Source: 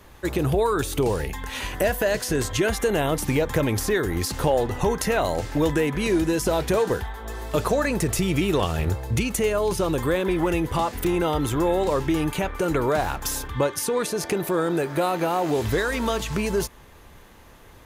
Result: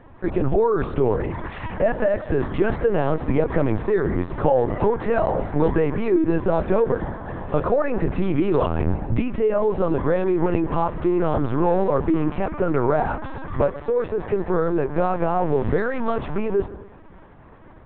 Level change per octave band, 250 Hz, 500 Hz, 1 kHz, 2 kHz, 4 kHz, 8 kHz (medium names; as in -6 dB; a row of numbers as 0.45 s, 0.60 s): +2.0 dB, +3.0 dB, +1.5 dB, -3.5 dB, under -10 dB, under -40 dB